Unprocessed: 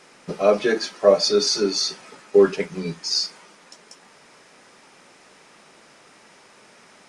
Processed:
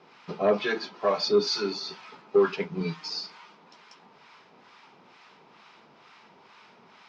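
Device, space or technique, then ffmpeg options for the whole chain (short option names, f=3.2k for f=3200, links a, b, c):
guitar amplifier with harmonic tremolo: -filter_complex "[0:a]acrossover=split=850[a][b];[a]aeval=exprs='val(0)*(1-0.7/2+0.7/2*cos(2*PI*2.2*n/s))':c=same[c];[b]aeval=exprs='val(0)*(1-0.7/2-0.7/2*cos(2*PI*2.2*n/s))':c=same[d];[c][d]amix=inputs=2:normalize=0,asoftclip=type=tanh:threshold=-11dB,highpass=91,equalizer=f=300:t=q:w=4:g=-4,equalizer=f=560:t=q:w=4:g=-7,equalizer=f=960:t=q:w=4:g=5,equalizer=f=1.8k:t=q:w=4:g=-5,lowpass=f=4.4k:w=0.5412,lowpass=f=4.4k:w=1.3066,asettb=1/sr,asplit=3[e][f][g];[e]atrim=end=2.804[h];[f]atrim=start=2.8:end=3.21,asetpts=PTS-STARTPTS,afade=t=in:d=0.004:c=qsin,afade=t=out:st=0.406:d=0.004:c=qsin,aecho=1:1:6.5:0.83,atrim=end_sample=18081[i];[g]atrim=start=3.206[j];[h][i]acrossfade=d=0.004:c1=hsin:c2=qsin[k];[k][j]acrossfade=d=0.004:c1=qsin:c2=hsin,volume=1dB"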